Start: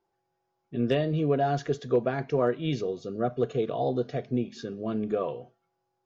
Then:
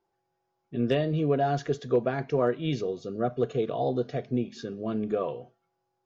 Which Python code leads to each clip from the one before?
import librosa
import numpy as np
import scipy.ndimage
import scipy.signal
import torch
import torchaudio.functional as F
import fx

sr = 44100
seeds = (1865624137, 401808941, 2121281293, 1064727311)

y = x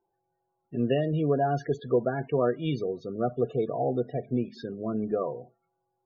y = fx.spec_topn(x, sr, count=32)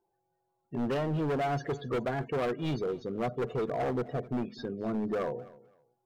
y = np.clip(x, -10.0 ** (-27.5 / 20.0), 10.0 ** (-27.5 / 20.0))
y = fx.echo_feedback(y, sr, ms=258, feedback_pct=22, wet_db=-20.5)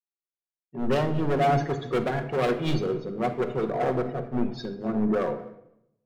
y = fx.room_shoebox(x, sr, seeds[0], volume_m3=1800.0, walls='mixed', distance_m=1.0)
y = fx.band_widen(y, sr, depth_pct=100)
y = y * librosa.db_to_amplitude(4.5)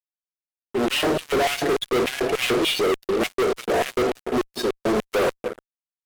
y = fx.cvsd(x, sr, bps=64000)
y = fx.filter_lfo_highpass(y, sr, shape='square', hz=3.4, low_hz=370.0, high_hz=2800.0, q=2.3)
y = fx.fuzz(y, sr, gain_db=33.0, gate_db=-42.0)
y = y * librosa.db_to_amplitude(-5.0)